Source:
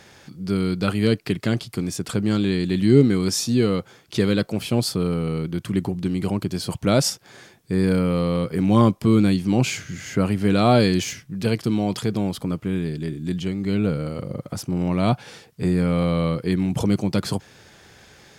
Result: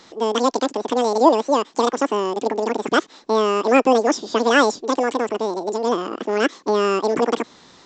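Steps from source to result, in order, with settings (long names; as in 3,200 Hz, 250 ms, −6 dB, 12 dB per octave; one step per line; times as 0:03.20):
wrong playback speed 33 rpm record played at 78 rpm
downsampling to 16,000 Hz
level +2 dB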